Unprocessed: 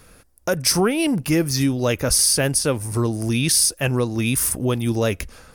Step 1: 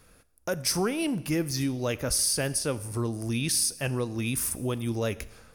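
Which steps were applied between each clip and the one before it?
Schroeder reverb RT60 0.99 s, combs from 27 ms, DRR 17 dB; trim -8.5 dB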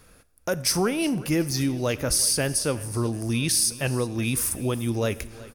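feedback delay 370 ms, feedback 46%, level -19.5 dB; trim +3.5 dB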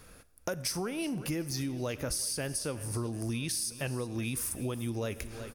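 compression 5:1, threshold -32 dBFS, peak gain reduction 12 dB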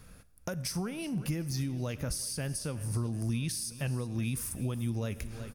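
resonant low shelf 250 Hz +6 dB, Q 1.5; trim -3 dB

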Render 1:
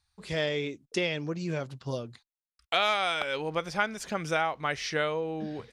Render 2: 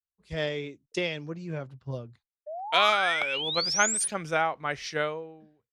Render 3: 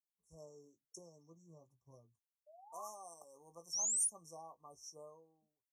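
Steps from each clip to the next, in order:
fade out at the end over 0.74 s; painted sound rise, 2.46–4.08 s, 580–10000 Hz -31 dBFS; three bands expanded up and down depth 100%
brick-wall FIR band-stop 1.2–5.4 kHz; pre-emphasis filter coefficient 0.9; doubling 18 ms -9 dB; trim -7 dB

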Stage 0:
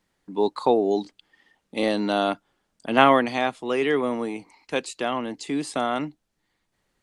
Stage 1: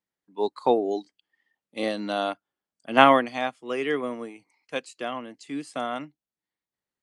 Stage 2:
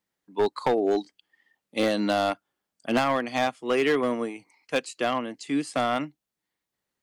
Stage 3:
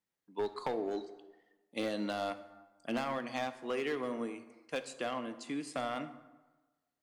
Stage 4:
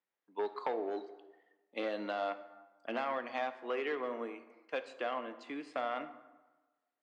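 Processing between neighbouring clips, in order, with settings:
spectral noise reduction 7 dB; high-pass 130 Hz 6 dB/octave; upward expansion 1.5:1, over -38 dBFS; trim +1.5 dB
compression 20:1, threshold -23 dBFS, peak gain reduction 15.5 dB; hard clipper -23.5 dBFS, distortion -13 dB; trim +6.5 dB
compression 2.5:1, threshold -26 dBFS, peak gain reduction 5 dB; plate-style reverb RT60 1.2 s, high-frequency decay 0.6×, DRR 10 dB; trim -8 dB
band-pass 390–2700 Hz; trim +1.5 dB

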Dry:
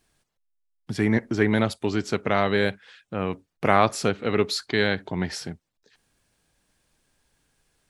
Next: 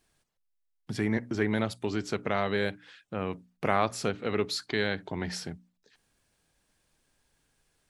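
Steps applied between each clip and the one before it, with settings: hum notches 60/120/180/240/300 Hz; in parallel at 0 dB: compression, threshold -27 dBFS, peak gain reduction 14 dB; on the sum: trim -9 dB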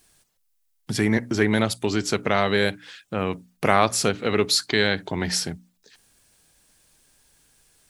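treble shelf 4.7 kHz +11 dB; trim +7 dB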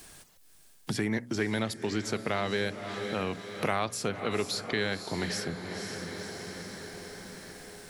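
echo that smears into a reverb 512 ms, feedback 48%, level -12.5 dB; three bands compressed up and down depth 70%; trim -9 dB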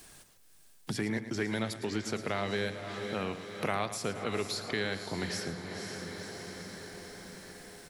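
feedback delay 110 ms, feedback 41%, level -12 dB; trim -3 dB

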